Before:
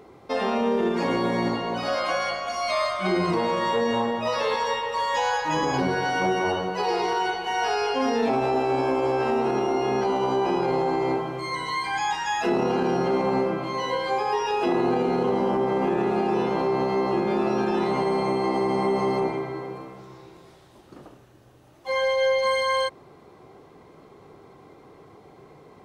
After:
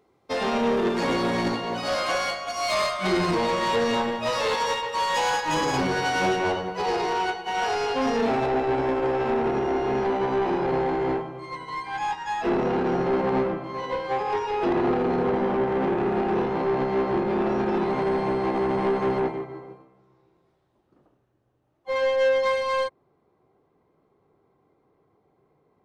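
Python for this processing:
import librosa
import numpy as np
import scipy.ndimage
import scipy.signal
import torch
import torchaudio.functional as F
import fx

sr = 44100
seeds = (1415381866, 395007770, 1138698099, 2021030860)

y = fx.high_shelf(x, sr, hz=2800.0, db=fx.steps((0.0, 4.5), (6.35, -2.5), (8.45, -11.5)))
y = 10.0 ** (-24.0 / 20.0) * np.tanh(y / 10.0 ** (-24.0 / 20.0))
y = fx.upward_expand(y, sr, threshold_db=-41.0, expansion=2.5)
y = F.gain(torch.from_numpy(y), 7.0).numpy()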